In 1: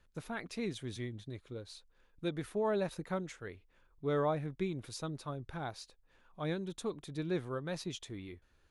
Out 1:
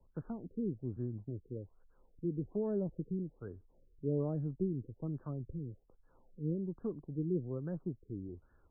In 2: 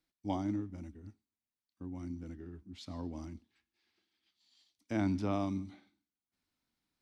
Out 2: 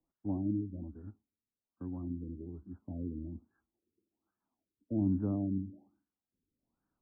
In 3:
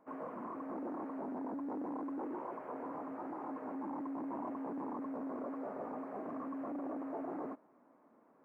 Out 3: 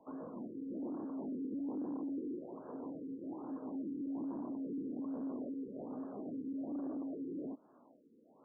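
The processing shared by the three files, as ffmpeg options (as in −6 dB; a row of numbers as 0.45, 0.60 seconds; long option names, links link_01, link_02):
-filter_complex "[0:a]acrossover=split=130|420[link_01][link_02][link_03];[link_03]acompressor=threshold=-56dB:ratio=10[link_04];[link_01][link_02][link_04]amix=inputs=3:normalize=0,afftfilt=real='re*lt(b*sr/1024,480*pow(1800/480,0.5+0.5*sin(2*PI*1.2*pts/sr)))':imag='im*lt(b*sr/1024,480*pow(1800/480,0.5+0.5*sin(2*PI*1.2*pts/sr)))':win_size=1024:overlap=0.75,volume=3dB"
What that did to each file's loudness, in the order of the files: −0.5, +1.5, 0.0 LU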